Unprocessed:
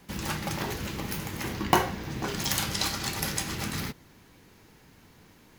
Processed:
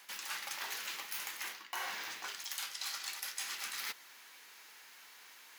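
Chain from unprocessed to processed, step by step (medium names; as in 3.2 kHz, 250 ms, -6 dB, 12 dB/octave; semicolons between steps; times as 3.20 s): high-pass 1.3 kHz 12 dB/octave; reverse; compression 16:1, threshold -43 dBFS, peak gain reduction 22.5 dB; reverse; trim +5.5 dB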